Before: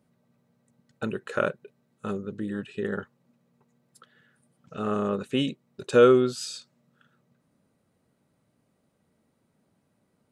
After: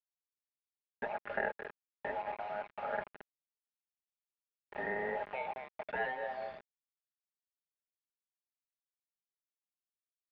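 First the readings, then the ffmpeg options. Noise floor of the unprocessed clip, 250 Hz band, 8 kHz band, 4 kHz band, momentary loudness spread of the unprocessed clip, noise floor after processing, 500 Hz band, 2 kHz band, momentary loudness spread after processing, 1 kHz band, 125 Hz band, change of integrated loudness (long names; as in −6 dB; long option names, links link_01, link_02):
−72 dBFS, −24.0 dB, below −35 dB, −20.5 dB, 20 LU, below −85 dBFS, −15.5 dB, −3.5 dB, 10 LU, −4.5 dB, −23.0 dB, −13.5 dB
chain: -filter_complex "[0:a]afftfilt=real='real(if(between(b,1,1008),(2*floor((b-1)/48)+1)*48-b,b),0)':imag='imag(if(between(b,1,1008),(2*floor((b-1)/48)+1)*48-b,b),0)*if(between(b,1,1008),-1,1)':win_size=2048:overlap=0.75,aecho=1:1:219|438:0.158|0.0365,aresample=11025,volume=12.5dB,asoftclip=hard,volume=-12.5dB,aresample=44100,acrusher=bits=5:mix=0:aa=0.000001,aecho=1:1:4.9:0.48,acrossover=split=820|1800[link_01][link_02][link_03];[link_01]acompressor=threshold=-25dB:ratio=4[link_04];[link_02]acompressor=threshold=-29dB:ratio=4[link_05];[link_03]acompressor=threshold=-37dB:ratio=4[link_06];[link_04][link_05][link_06]amix=inputs=3:normalize=0,afftfilt=real='re*lt(hypot(re,im),0.316)':imag='im*lt(hypot(re,im),0.316)':win_size=1024:overlap=0.75,highpass=48,aeval=exprs='sgn(val(0))*max(abs(val(0))-0.00126,0)':channel_layout=same,areverse,acompressor=mode=upward:threshold=-43dB:ratio=2.5,areverse,lowpass=frequency=2300:width=0.5412,lowpass=frequency=2300:width=1.3066,volume=-4.5dB"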